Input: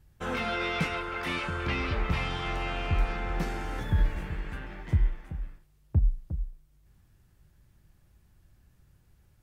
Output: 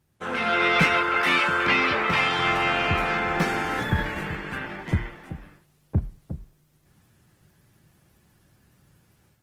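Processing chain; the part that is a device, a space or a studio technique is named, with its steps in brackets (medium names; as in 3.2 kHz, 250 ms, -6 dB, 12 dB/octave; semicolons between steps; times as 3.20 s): 1.21–2.38 s: high-pass 230 Hz 6 dB/octave; dynamic bell 1.7 kHz, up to +5 dB, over -47 dBFS, Q 0.75; video call (high-pass 140 Hz 12 dB/octave; level rider gain up to 8.5 dB; Opus 20 kbps 48 kHz)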